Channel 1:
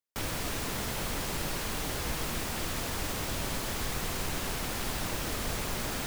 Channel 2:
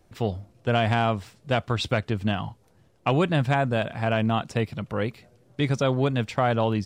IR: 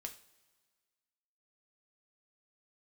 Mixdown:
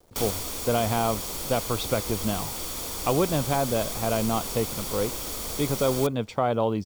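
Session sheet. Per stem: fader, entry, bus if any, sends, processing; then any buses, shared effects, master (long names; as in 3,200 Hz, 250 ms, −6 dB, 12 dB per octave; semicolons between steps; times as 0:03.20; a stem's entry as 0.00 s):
+2.0 dB, 0.00 s, send −12 dB, high-shelf EQ 2,600 Hz +10.5 dB; automatic ducking −11 dB, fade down 0.45 s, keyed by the second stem
−3.5 dB, 0.00 s, no send, no processing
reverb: on, pre-delay 3 ms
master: comb filter 0.9 ms, depth 34%; bit reduction 10 bits; octave-band graphic EQ 125/500/2,000 Hz −5/+9/−6 dB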